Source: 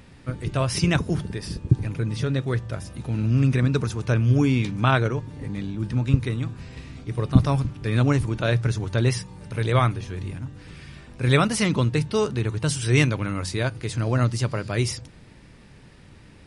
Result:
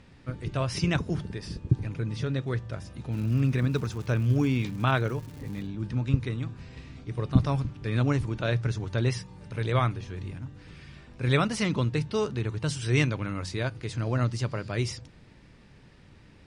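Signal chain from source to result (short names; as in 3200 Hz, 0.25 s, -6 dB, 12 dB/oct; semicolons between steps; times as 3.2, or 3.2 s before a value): LPF 7100 Hz 12 dB/oct; 3.11–5.65 crackle 300/s -35 dBFS; gain -5 dB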